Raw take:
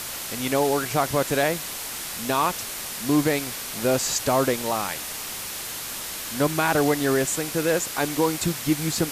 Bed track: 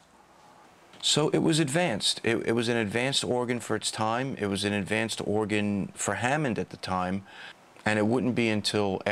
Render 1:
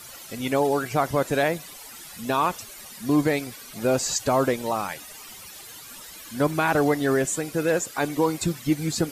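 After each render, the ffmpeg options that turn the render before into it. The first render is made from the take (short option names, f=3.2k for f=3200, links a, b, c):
-af "afftdn=nr=14:nf=-33"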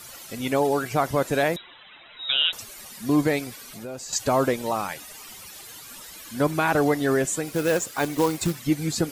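-filter_complex "[0:a]asettb=1/sr,asplit=3[a][b][c];[a]atrim=end=1.564[d];[b]atrim=start=1.56:end=2.53,asetpts=PTS-STARTPTS,afade=t=in:d=0.004:c=qsin,afade=t=out:st=0.966:d=0.004:c=qsin,lowpass=f=3.4k:t=q:w=0.5098,lowpass=f=3.4k:t=q:w=0.6013,lowpass=f=3.4k:t=q:w=0.9,lowpass=f=3.4k:t=q:w=2.563,afreqshift=-4000[e];[c]atrim=start=2.526[f];[d][e]acrossfade=d=0.004:c1=hsin:c2=qsin[g];[g][f]acrossfade=d=0.004:c1=qsin:c2=hsin,asettb=1/sr,asplit=3[h][i][j];[h]atrim=end=3.594[k];[i]atrim=start=3.59:end=4.13,asetpts=PTS-STARTPTS,afade=t=in:d=0.004:c=qsin,afade=t=out:st=0.536:d=0.004:c=qsin,acompressor=threshold=-37dB:ratio=3:attack=3.2:release=140:knee=1:detection=peak[l];[j]atrim=start=4.126[m];[k][l]acrossfade=d=0.004:c1=hsin:c2=qsin[n];[n][m]acrossfade=d=0.004:c1=qsin:c2=hsin,asettb=1/sr,asplit=3[o][p][q];[o]atrim=end=7.474[r];[p]atrim=start=7.47:end=8.59,asetpts=PTS-STARTPTS,afade=t=in:d=0.004:c=qsin,afade=t=out:st=1.116:d=0.004:c=qsin,acrusher=bits=3:mode=log:mix=0:aa=0.000001[s];[q]atrim=start=8.586[t];[r][s]acrossfade=d=0.004:c1=hsin:c2=qsin[u];[u][t]acrossfade=d=0.004:c1=qsin:c2=hsin"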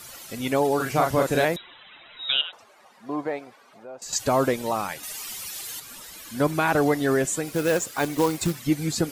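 -filter_complex "[0:a]asettb=1/sr,asplit=3[a][b][c];[a]atrim=end=0.764[d];[b]atrim=start=0.76:end=1.45,asetpts=PTS-STARTPTS,afade=t=in:d=0.004:c=qsin,afade=t=out:st=0.686:d=0.004:c=qsin,asplit=2[e][f];[f]adelay=38,volume=-3dB[g];[e][g]amix=inputs=2:normalize=0,atrim=end_sample=30429[h];[c]atrim=start=1.446[i];[d][h]acrossfade=d=0.004:c1=hsin:c2=qsin[j];[j][i]acrossfade=d=0.004:c1=qsin:c2=hsin,asettb=1/sr,asplit=3[k][l][m];[k]atrim=end=2.414[n];[l]atrim=start=2.41:end=4.02,asetpts=PTS-STARTPTS,afade=t=in:d=0.004:c=qsin,afade=t=out:st=1.606:d=0.004:c=qsin,bandpass=f=810:t=q:w=1.3[o];[m]atrim=start=4.016[p];[n][o]acrossfade=d=0.004:c1=hsin:c2=qsin[q];[q][p]acrossfade=d=0.004:c1=qsin:c2=hsin,asettb=1/sr,asplit=3[r][s][t];[r]atrim=end=5.034[u];[s]atrim=start=5.03:end=5.8,asetpts=PTS-STARTPTS,afade=t=in:d=0.004:c=qsin,afade=t=out:st=0.766:d=0.004:c=qsin,highshelf=f=2k:g=8[v];[t]atrim=start=5.796[w];[u][v]acrossfade=d=0.004:c1=hsin:c2=qsin[x];[x][w]acrossfade=d=0.004:c1=qsin:c2=hsin"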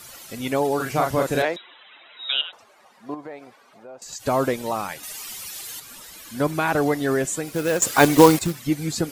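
-filter_complex "[0:a]asettb=1/sr,asplit=3[a][b][c];[a]atrim=end=1.424[d];[b]atrim=start=1.42:end=2.37,asetpts=PTS-STARTPTS,afade=t=in:d=0.004:c=qsin,afade=t=out:st=0.946:d=0.004:c=qsin,acrossover=split=250 6500:gain=0.0794 1 0.0708[e][f][g];[e][f][g]amix=inputs=3:normalize=0[h];[c]atrim=start=2.366[i];[d][h]acrossfade=d=0.004:c1=hsin:c2=qsin[j];[j][i]acrossfade=d=0.004:c1=qsin:c2=hsin,asettb=1/sr,asplit=3[k][l][m];[k]atrim=end=3.144[n];[l]atrim=start=3.14:end=4.27,asetpts=PTS-STARTPTS,afade=t=in:d=0.004:c=qsin,afade=t=out:st=1.126:d=0.004:c=qsin,acompressor=threshold=-36dB:ratio=2.5:attack=3.2:release=140:knee=1:detection=peak[o];[m]atrim=start=4.266[p];[n][o]acrossfade=d=0.004:c1=hsin:c2=qsin[q];[q][p]acrossfade=d=0.004:c1=qsin:c2=hsin,asplit=3[r][s][t];[r]atrim=end=7.822[u];[s]atrim=start=7.818:end=8.392,asetpts=PTS-STARTPTS,volume=10.5dB[v];[t]atrim=start=8.388[w];[u][v]acrossfade=d=0.004:c1=hsin:c2=hsin[x];[x][w]acrossfade=d=0.004:c1=hsin:c2=hsin"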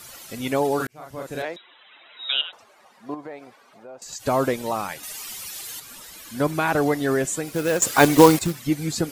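-filter_complex "[0:a]asplit=2[a][b];[a]atrim=end=0.87,asetpts=PTS-STARTPTS,afade=t=out:st=0.866:d=0.004:c=hsin[c];[b]atrim=start=0.87,asetpts=PTS-STARTPTS,afade=t=in:d=1.36[d];[c][d]concat=n=2:v=0:a=1"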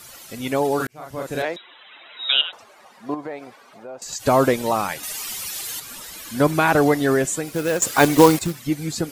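-af "dynaudnorm=f=390:g=5:m=5.5dB"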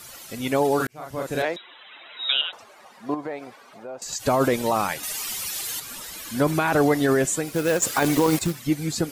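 -af "alimiter=limit=-11dB:level=0:latency=1:release=21"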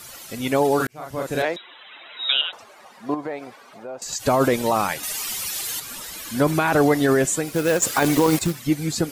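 -af "volume=2dB"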